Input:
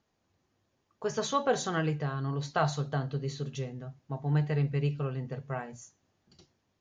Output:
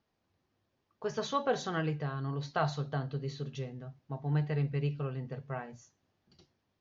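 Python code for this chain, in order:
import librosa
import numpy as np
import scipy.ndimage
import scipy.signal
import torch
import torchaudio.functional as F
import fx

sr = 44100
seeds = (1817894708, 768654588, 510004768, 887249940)

y = scipy.signal.sosfilt(scipy.signal.butter(4, 5600.0, 'lowpass', fs=sr, output='sos'), x)
y = y * librosa.db_to_amplitude(-3.0)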